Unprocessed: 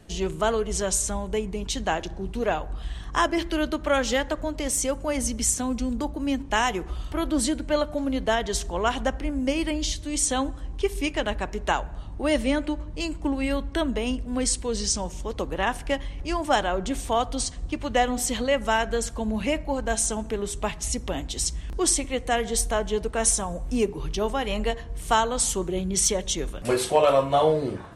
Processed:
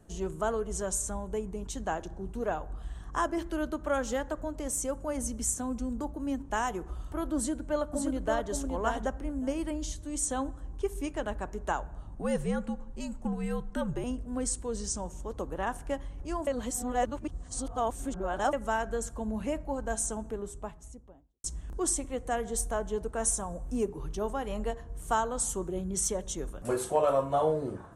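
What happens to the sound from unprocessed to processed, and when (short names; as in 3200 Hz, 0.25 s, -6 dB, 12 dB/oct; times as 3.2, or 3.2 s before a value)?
7.36–8.49 echo throw 0.57 s, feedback 10%, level -4 dB
12.15–14.04 frequency shift -77 Hz
16.47–18.53 reverse
20.03–21.44 studio fade out
whole clip: band shelf 3200 Hz -10 dB; gain -6.5 dB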